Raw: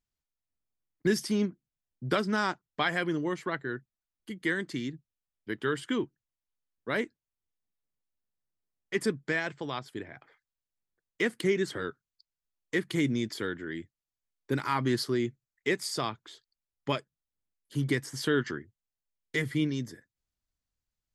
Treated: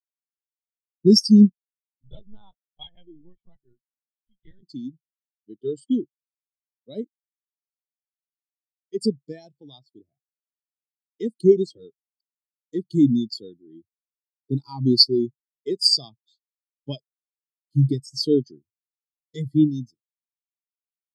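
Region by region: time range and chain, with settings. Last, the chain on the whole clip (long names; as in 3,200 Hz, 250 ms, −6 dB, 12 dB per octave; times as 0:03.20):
0:01.49–0:04.63: parametric band 240 Hz −6.5 dB 2.6 octaves + amplitude modulation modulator 100 Hz, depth 55% + linear-prediction vocoder at 8 kHz pitch kept
whole clip: drawn EQ curve 200 Hz 0 dB, 380 Hz −3 dB, 800 Hz −2 dB, 1,600 Hz −16 dB, 4,500 Hz +13 dB; every bin expanded away from the loudest bin 2.5 to 1; level +7.5 dB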